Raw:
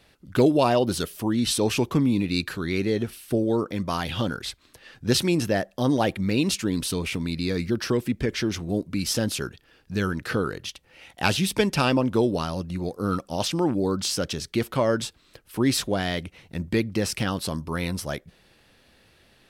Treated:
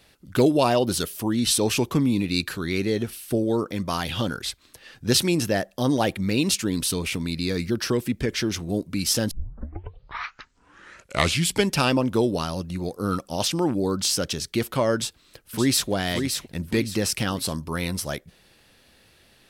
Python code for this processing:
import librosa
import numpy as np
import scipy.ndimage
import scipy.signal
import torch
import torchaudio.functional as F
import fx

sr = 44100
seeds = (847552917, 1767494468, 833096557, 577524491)

y = fx.echo_throw(x, sr, start_s=14.96, length_s=0.92, ms=570, feedback_pct=35, wet_db=-5.5)
y = fx.edit(y, sr, fx.tape_start(start_s=9.31, length_s=2.4), tone=tone)
y = fx.high_shelf(y, sr, hz=4600.0, db=6.5)